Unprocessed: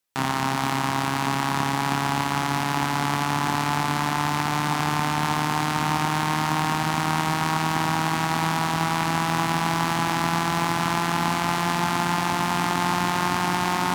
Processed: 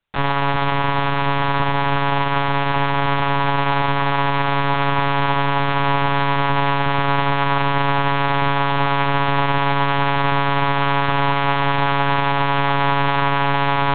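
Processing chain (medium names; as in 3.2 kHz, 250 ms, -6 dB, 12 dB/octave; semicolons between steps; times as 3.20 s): monotone LPC vocoder at 8 kHz 140 Hz; trim +6.5 dB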